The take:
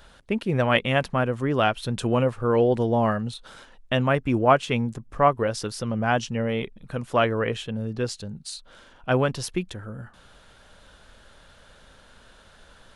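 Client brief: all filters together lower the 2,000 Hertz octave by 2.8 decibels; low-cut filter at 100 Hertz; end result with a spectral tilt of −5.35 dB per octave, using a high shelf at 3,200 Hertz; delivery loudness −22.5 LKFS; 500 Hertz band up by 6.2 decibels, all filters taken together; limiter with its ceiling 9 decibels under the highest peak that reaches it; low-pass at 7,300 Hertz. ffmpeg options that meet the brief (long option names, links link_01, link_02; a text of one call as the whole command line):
ffmpeg -i in.wav -af "highpass=100,lowpass=7300,equalizer=frequency=500:width_type=o:gain=7.5,equalizer=frequency=2000:width_type=o:gain=-6.5,highshelf=frequency=3200:gain=6,volume=0.5dB,alimiter=limit=-10dB:level=0:latency=1" out.wav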